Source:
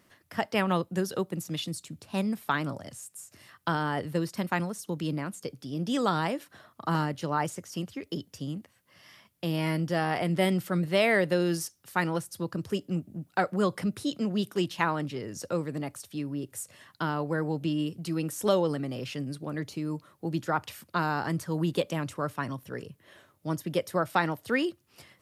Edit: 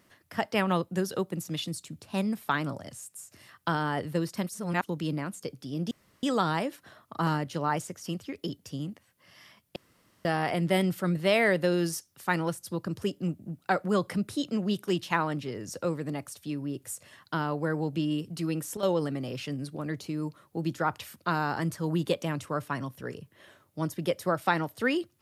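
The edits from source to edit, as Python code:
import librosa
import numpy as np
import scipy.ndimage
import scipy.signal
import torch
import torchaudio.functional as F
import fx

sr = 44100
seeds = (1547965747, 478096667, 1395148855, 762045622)

y = fx.edit(x, sr, fx.reverse_span(start_s=4.49, length_s=0.35),
    fx.insert_room_tone(at_s=5.91, length_s=0.32),
    fx.room_tone_fill(start_s=9.44, length_s=0.49),
    fx.fade_down_up(start_s=18.16, length_s=0.64, db=-12.0, fade_s=0.29, curve='log'), tone=tone)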